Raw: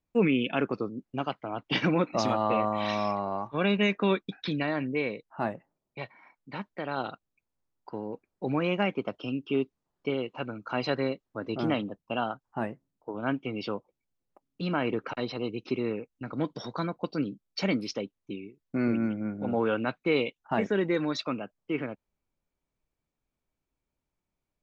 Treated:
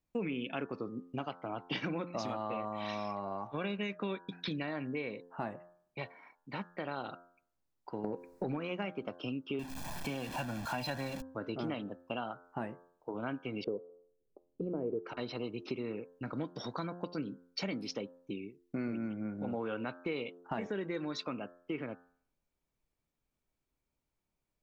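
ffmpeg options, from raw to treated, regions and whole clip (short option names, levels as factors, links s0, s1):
-filter_complex "[0:a]asettb=1/sr,asplit=3[s0][s1][s2];[s0]atrim=end=8.044[s3];[s1]atrim=start=8.04:end=8.57,asetpts=PTS-STARTPTS,afade=t=in:d=0.004:c=qsin,afade=t=out:st=0.526:d=0.004:c=qsin,equalizer=f=3200:t=o:w=0.25:g=-13.5,acompressor=threshold=0.00562:ratio=2:attack=3.2:release=140:knee=1:detection=peak,aeval=exprs='0.168*sin(PI/2*4.47*val(0)/0.168)':c=same[s4];[s2]atrim=start=8.566[s5];[s3][s4]acrossfade=d=0.004:c1=hsin:c2=qsin[s6];[s6][s5]acrossfade=d=0.004:c1=qsin:c2=hsin,asettb=1/sr,asplit=3[s7][s8][s9];[s7]atrim=end=9.594[s10];[s8]atrim=start=9.59:end=11.22,asetpts=PTS-STARTPTS,afade=t=in:d=0.004:c=qsin,afade=t=out:st=1.626:d=0.004:c=qsin,aeval=exprs='val(0)+0.5*0.0178*sgn(val(0))':c=same,aecho=1:1:1.2:0.72,atrim=end_sample=71883[s11];[s9]atrim=start=11.216[s12];[s10][s11]acrossfade=d=0.004:c1=hsin:c2=qsin[s13];[s13][s12]acrossfade=d=0.004:c1=qsin:c2=hsin,asettb=1/sr,asplit=3[s14][s15][s16];[s14]atrim=end=13.644[s17];[s15]atrim=start=13.64:end=15.03,asetpts=PTS-STARTPTS,afade=t=in:d=0.004:c=qsin,afade=t=out:st=1.386:d=0.004:c=qsin,lowpass=f=440:t=q:w=4.3,asubboost=boost=3:cutoff=120[s18];[s16]atrim=start=15.026[s19];[s17][s18]acrossfade=d=0.004:c1=hsin:c2=qsin[s20];[s20][s19]acrossfade=d=0.004:c1=qsin:c2=hsin,bandreject=f=87.77:t=h:w=4,bandreject=f=175.54:t=h:w=4,bandreject=f=263.31:t=h:w=4,bandreject=f=351.08:t=h:w=4,bandreject=f=438.85:t=h:w=4,bandreject=f=526.62:t=h:w=4,bandreject=f=614.39:t=h:w=4,bandreject=f=702.16:t=h:w=4,bandreject=f=789.93:t=h:w=4,bandreject=f=877.7:t=h:w=4,bandreject=f=965.47:t=h:w=4,bandreject=f=1053.24:t=h:w=4,bandreject=f=1141.01:t=h:w=4,bandreject=f=1228.78:t=h:w=4,bandreject=f=1316.55:t=h:w=4,bandreject=f=1404.32:t=h:w=4,bandreject=f=1492.09:t=h:w=4,bandreject=f=1579.86:t=h:w=4,bandreject=f=1667.63:t=h:w=4,bandreject=f=1755.4:t=h:w=4,acompressor=threshold=0.02:ratio=4,volume=0.891"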